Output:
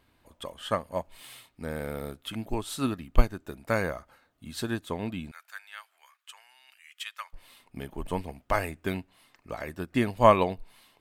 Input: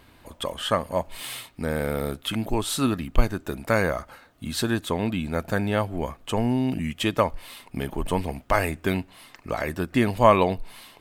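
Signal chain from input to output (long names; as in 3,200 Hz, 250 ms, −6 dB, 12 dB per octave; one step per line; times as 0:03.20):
0:05.31–0:07.33: high-pass filter 1,300 Hz 24 dB per octave
expander for the loud parts 1.5 to 1, over −35 dBFS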